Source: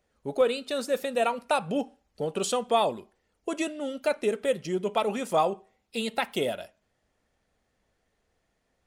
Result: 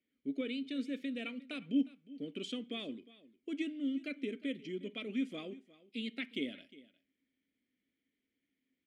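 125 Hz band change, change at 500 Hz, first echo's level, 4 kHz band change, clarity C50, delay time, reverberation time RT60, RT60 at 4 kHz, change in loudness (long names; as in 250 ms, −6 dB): −13.0 dB, −18.5 dB, −19.5 dB, −9.0 dB, no reverb audible, 357 ms, no reverb audible, no reverb audible, −11.0 dB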